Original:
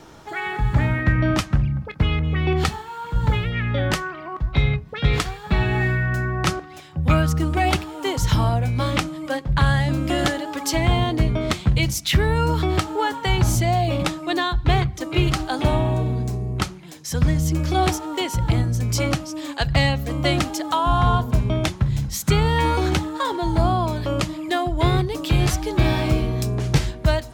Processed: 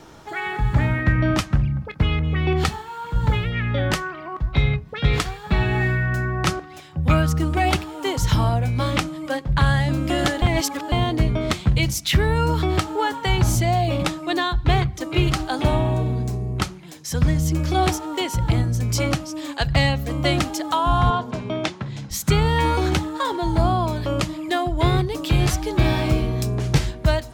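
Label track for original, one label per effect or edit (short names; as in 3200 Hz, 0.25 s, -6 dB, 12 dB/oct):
10.420000	10.920000	reverse
21.100000	22.110000	BPF 220–5700 Hz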